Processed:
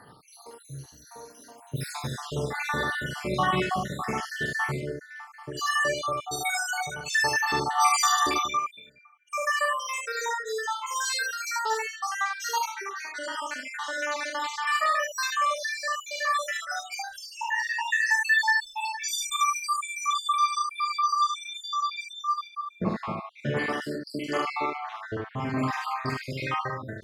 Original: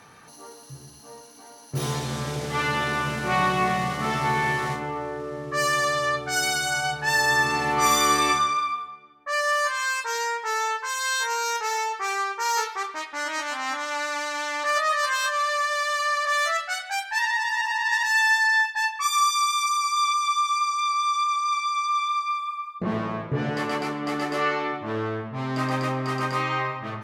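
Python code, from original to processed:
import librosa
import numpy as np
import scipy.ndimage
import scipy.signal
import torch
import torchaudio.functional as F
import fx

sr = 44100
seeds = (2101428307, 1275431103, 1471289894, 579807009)

y = fx.spec_dropout(x, sr, seeds[0], share_pct=73)
y = fx.room_early_taps(y, sr, ms=(43, 73), db=(-5.0, -4.5))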